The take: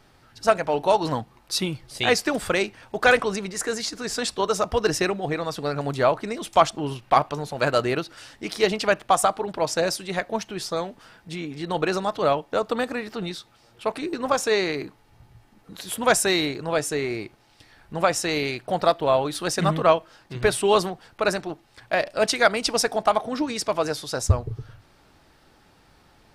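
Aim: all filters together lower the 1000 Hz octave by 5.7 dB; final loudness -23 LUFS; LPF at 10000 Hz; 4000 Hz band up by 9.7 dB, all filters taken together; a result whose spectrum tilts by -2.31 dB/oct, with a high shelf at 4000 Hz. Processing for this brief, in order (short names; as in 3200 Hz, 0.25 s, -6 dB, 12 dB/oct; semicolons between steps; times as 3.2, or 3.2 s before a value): LPF 10000 Hz; bell 1000 Hz -9 dB; high shelf 4000 Hz +6 dB; bell 4000 Hz +8.5 dB; gain -1 dB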